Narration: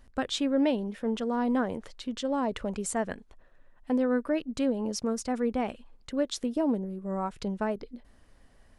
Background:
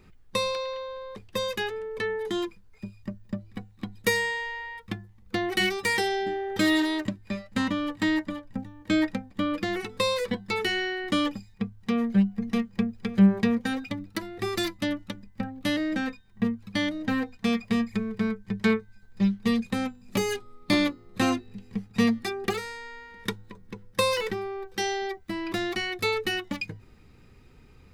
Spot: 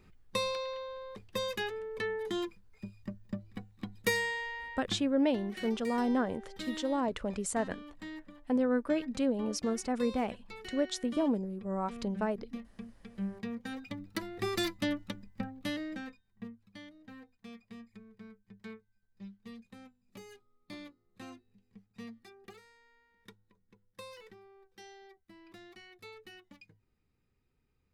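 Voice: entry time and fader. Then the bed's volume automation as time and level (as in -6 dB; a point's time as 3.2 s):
4.60 s, -2.5 dB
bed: 4.97 s -5.5 dB
5.27 s -19.5 dB
13.2 s -19.5 dB
14.22 s -4 dB
15.27 s -4 dB
16.89 s -24 dB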